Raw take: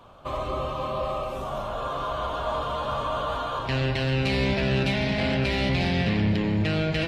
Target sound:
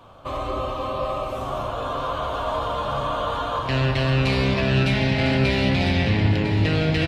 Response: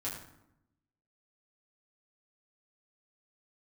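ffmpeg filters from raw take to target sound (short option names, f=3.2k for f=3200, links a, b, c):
-filter_complex "[0:a]aecho=1:1:1003:0.376,asplit=2[a][b];[1:a]atrim=start_sample=2205[c];[b][c]afir=irnorm=-1:irlink=0,volume=-6dB[d];[a][d]amix=inputs=2:normalize=0"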